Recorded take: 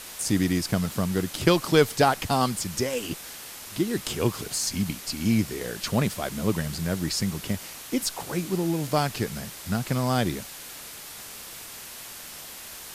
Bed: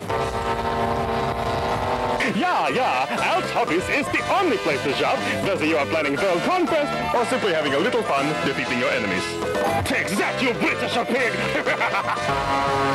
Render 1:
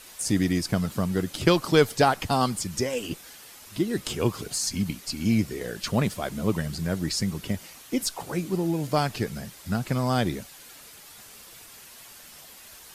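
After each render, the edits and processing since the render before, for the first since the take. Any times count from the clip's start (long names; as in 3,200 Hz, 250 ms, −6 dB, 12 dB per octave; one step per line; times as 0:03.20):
broadband denoise 8 dB, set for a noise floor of −41 dBFS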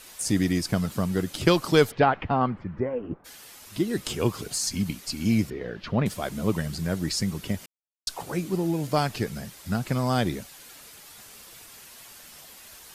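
0:01.90–0:03.24: low-pass filter 3,300 Hz → 1,200 Hz 24 dB per octave
0:05.50–0:06.06: high-frequency loss of the air 290 metres
0:07.66–0:08.07: silence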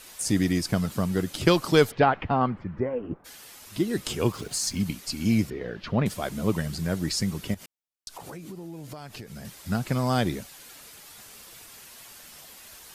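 0:04.32–0:04.80: slack as between gear wheels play −43.5 dBFS
0:07.54–0:09.45: downward compressor 12 to 1, threshold −36 dBFS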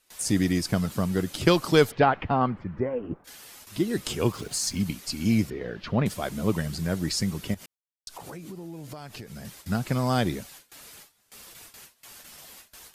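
noise gate with hold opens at −36 dBFS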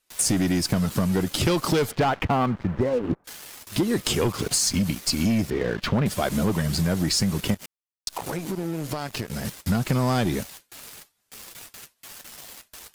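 leveller curve on the samples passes 3
downward compressor, threshold −20 dBFS, peak gain reduction 10 dB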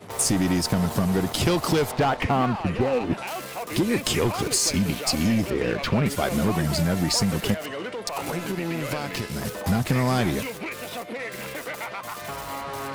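mix in bed −12 dB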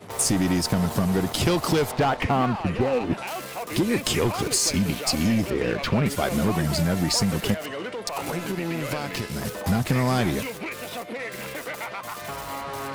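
no processing that can be heard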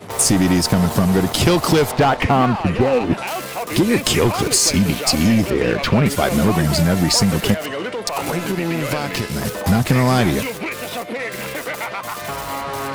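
level +7 dB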